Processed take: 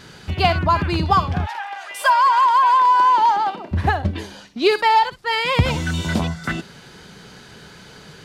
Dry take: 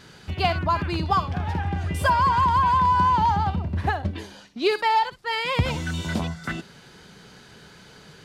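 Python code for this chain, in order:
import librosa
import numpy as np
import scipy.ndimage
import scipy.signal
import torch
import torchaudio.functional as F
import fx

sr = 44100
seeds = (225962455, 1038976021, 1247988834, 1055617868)

y = fx.highpass(x, sr, hz=fx.line((1.45, 850.0), (3.71, 290.0)), slope=24, at=(1.45, 3.71), fade=0.02)
y = y * 10.0 ** (5.5 / 20.0)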